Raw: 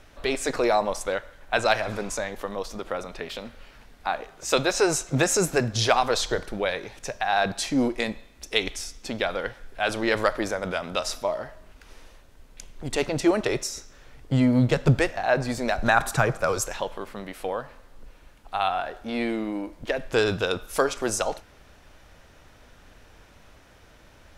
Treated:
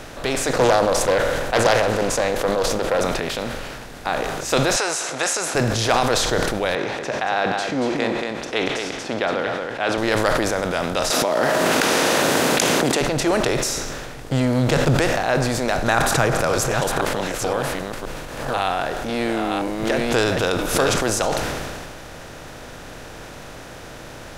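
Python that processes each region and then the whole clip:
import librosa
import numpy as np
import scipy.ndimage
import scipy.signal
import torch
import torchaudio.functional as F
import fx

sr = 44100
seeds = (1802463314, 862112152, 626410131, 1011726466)

y = fx.chain(x, sr, fx.peak_eq(hz=510.0, db=10.5, octaves=0.44),
    fx.doppler_dist(depth_ms=0.37), at=(0.53, 3.03))
y = fx.chain(y, sr, fx.highpass(hz=850.0, slope=12),
    fx.resample_bad(factor=2, down='none', up='filtered'), at=(4.76, 5.55))
y = fx.chain(y, sr, fx.bandpass_edges(low_hz=220.0, high_hz=3000.0),
    fx.echo_single(ms=230, db=-10.0), at=(6.75, 9.98))
y = fx.chain(y, sr, fx.highpass(hz=210.0, slope=24),
    fx.env_flatten(amount_pct=100), at=(11.1, 13.01))
y = fx.chain(y, sr, fx.reverse_delay(ms=521, wet_db=-5.5),
    fx.pre_swell(db_per_s=87.0), at=(15.97, 20.96))
y = fx.bin_compress(y, sr, power=0.6)
y = fx.sustainer(y, sr, db_per_s=25.0)
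y = y * 10.0 ** (-2.5 / 20.0)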